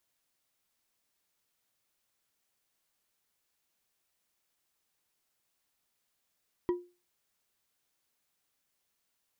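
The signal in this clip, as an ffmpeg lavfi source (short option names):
-f lavfi -i "aevalsrc='0.0708*pow(10,-3*t/0.31)*sin(2*PI*354*t)+0.02*pow(10,-3*t/0.152)*sin(2*PI*976*t)+0.00562*pow(10,-3*t/0.095)*sin(2*PI*1913*t)+0.00158*pow(10,-3*t/0.067)*sin(2*PI*3162.3*t)+0.000447*pow(10,-3*t/0.051)*sin(2*PI*4722.4*t)':d=0.89:s=44100"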